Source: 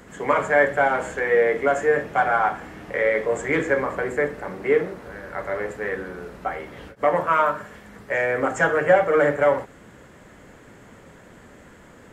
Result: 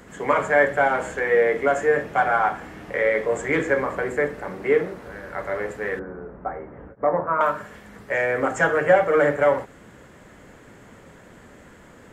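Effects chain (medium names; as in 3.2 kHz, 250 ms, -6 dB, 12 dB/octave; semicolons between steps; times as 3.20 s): 5.99–7.41 s: Bessel low-pass 1.1 kHz, order 6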